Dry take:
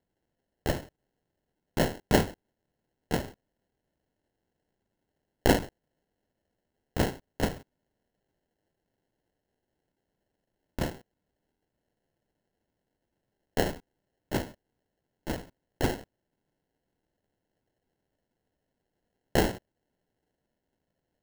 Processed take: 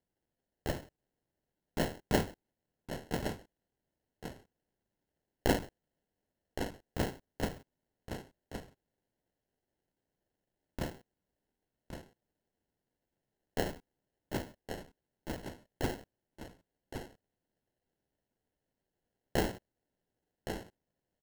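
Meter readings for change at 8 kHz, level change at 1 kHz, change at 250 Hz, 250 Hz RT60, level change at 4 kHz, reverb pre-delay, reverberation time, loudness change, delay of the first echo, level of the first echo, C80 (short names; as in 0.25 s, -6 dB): -6.0 dB, -6.0 dB, -6.0 dB, none, -6.0 dB, none, none, -8.0 dB, 1.116 s, -8.5 dB, none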